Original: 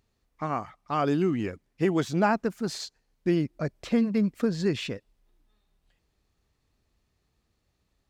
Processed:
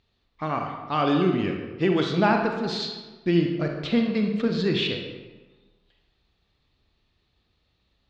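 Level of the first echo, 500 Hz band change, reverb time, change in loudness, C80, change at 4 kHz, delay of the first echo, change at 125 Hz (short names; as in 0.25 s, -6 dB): none, +3.0 dB, 1.3 s, +3.0 dB, 6.0 dB, +9.0 dB, none, +3.0 dB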